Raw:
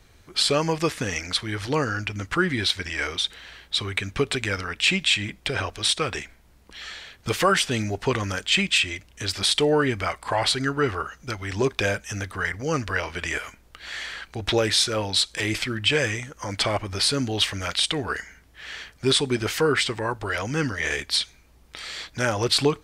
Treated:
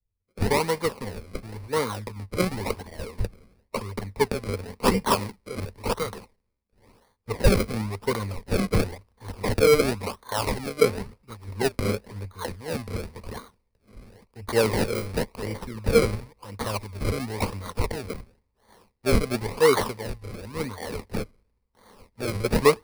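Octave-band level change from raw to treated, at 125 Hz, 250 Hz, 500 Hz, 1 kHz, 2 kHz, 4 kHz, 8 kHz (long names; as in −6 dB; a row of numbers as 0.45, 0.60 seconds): 0.0, −1.0, +1.5, −1.0, −7.5, −13.0, −7.0 decibels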